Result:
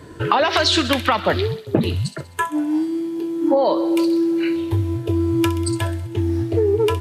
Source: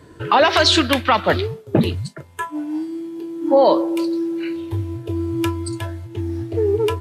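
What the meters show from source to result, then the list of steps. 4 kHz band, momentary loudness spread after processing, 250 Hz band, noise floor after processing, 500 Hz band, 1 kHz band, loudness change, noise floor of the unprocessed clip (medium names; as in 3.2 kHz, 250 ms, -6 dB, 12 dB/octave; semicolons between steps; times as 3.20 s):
-2.0 dB, 7 LU, +2.0 dB, -40 dBFS, -1.0 dB, -2.0 dB, -0.5 dB, -45 dBFS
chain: feedback echo behind a high-pass 64 ms, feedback 58%, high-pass 3 kHz, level -11.5 dB; compression 6:1, threshold -19 dBFS, peak gain reduction 9.5 dB; trim +5 dB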